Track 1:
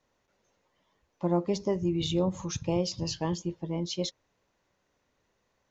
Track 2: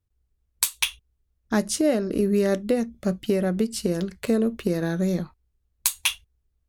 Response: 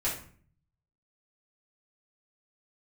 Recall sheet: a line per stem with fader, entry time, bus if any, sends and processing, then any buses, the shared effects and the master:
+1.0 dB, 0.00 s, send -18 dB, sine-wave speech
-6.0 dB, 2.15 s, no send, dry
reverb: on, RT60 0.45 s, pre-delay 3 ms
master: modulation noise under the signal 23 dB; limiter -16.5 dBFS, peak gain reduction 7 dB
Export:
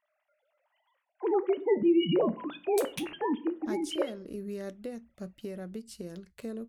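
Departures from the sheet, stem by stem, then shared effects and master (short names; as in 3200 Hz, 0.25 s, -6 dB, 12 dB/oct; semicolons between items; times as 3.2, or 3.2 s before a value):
stem 2 -6.0 dB -> -16.5 dB; master: missing modulation noise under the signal 23 dB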